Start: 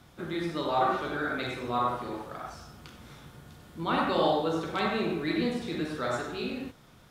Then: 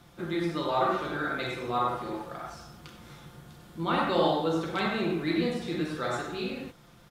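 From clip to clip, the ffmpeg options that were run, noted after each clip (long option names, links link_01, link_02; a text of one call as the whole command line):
ffmpeg -i in.wav -af "aecho=1:1:5.8:0.41" out.wav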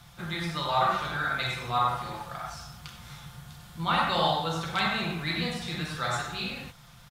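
ffmpeg -i in.wav -af "firequalizer=gain_entry='entry(130,0);entry(310,-18);entry(760,-3);entry(3800,1)':delay=0.05:min_phase=1,volume=5.5dB" out.wav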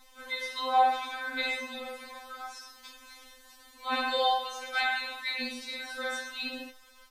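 ffmpeg -i in.wav -af "afftfilt=real='re*3.46*eq(mod(b,12),0)':imag='im*3.46*eq(mod(b,12),0)':win_size=2048:overlap=0.75" out.wav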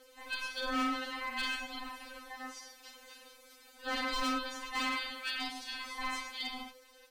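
ffmpeg -i in.wav -af "aeval=exprs='val(0)*sin(2*PI*510*n/s)':channel_layout=same,asoftclip=type=hard:threshold=-29dB" out.wav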